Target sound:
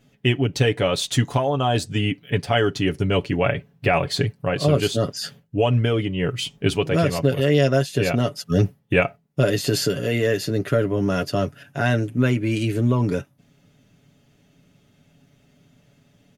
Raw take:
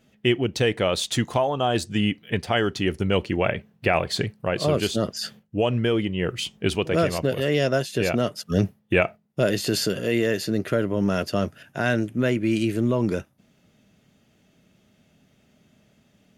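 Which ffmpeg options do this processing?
ffmpeg -i in.wav -af "lowshelf=frequency=140:gain=6.5,aecho=1:1:7.1:0.61" out.wav

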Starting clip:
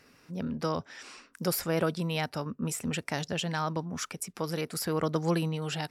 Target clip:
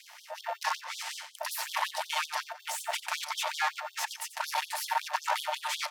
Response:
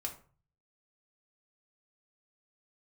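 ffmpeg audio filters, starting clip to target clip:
-filter_complex "[0:a]aemphasis=mode=production:type=50kf,bandreject=frequency=1100:width=19,asplit=2[link_01][link_02];[link_02]highpass=frequency=720:poles=1,volume=29dB,asoftclip=type=tanh:threshold=-8.5dB[link_03];[link_01][link_03]amix=inputs=2:normalize=0,lowpass=frequency=1500:poles=1,volume=-6dB,aeval=exprs='val(0)*sin(2*PI*450*n/s)':channel_layout=same,aeval=exprs='max(val(0),0)':channel_layout=same,asplit=2[link_04][link_05];[link_05]aecho=0:1:90|180|270|360:0.211|0.0824|0.0321|0.0125[link_06];[link_04][link_06]amix=inputs=2:normalize=0,afftfilt=real='re*gte(b*sr/1024,510*pow(3200/510,0.5+0.5*sin(2*PI*5.4*pts/sr)))':imag='im*gte(b*sr/1024,510*pow(3200/510,0.5+0.5*sin(2*PI*5.4*pts/sr)))':win_size=1024:overlap=0.75"

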